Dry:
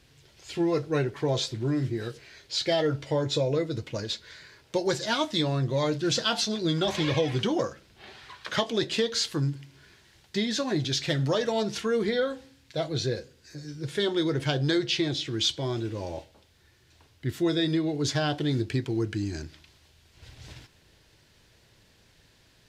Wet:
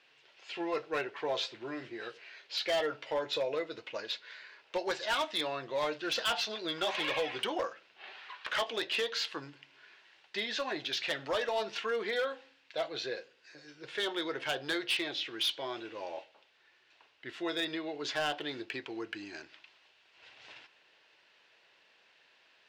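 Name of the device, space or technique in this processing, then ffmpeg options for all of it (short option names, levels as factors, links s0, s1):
megaphone: -af "highpass=660,lowpass=3200,equalizer=f=2700:t=o:w=0.25:g=6,asoftclip=type=hard:threshold=0.0501"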